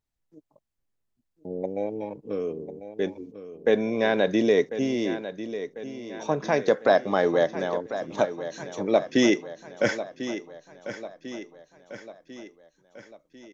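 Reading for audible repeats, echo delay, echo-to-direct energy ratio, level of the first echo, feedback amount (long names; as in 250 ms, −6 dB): 5, 1,046 ms, −10.5 dB, −12.0 dB, 52%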